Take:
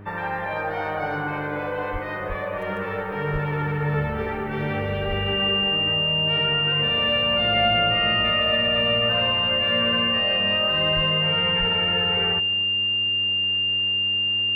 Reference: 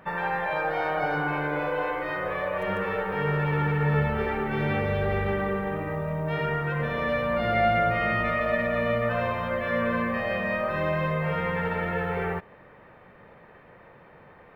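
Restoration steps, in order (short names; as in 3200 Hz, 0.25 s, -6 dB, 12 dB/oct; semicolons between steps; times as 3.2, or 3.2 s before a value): de-hum 100.7 Hz, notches 4; notch 2800 Hz, Q 30; de-plosive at 1.92/2.28/3.32/5.07/10.95/11.59; inverse comb 0.254 s -21 dB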